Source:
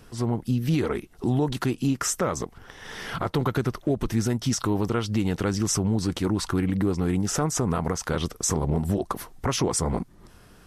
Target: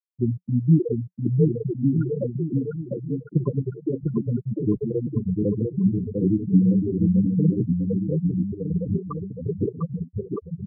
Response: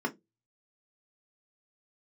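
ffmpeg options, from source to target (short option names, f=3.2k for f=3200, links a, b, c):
-af "flanger=delay=5.8:depth=4.3:regen=1:speed=1.2:shape=sinusoidal,afftfilt=real='re*gte(hypot(re,im),0.316)':imag='im*gte(hypot(re,im),0.316)':win_size=1024:overlap=0.75,highpass=100,equalizer=f=180:t=q:w=4:g=7,equalizer=f=460:t=q:w=4:g=5,equalizer=f=840:t=q:w=4:g=-5,equalizer=f=1.7k:t=q:w=4:g=-5,equalizer=f=3k:t=q:w=4:g=7,lowpass=f=3.6k:w=0.5412,lowpass=f=3.6k:w=1.3066,aecho=1:1:700|1260|1708|2066|2353:0.631|0.398|0.251|0.158|0.1,volume=5dB" -ar 48000 -c:a aac -b:a 160k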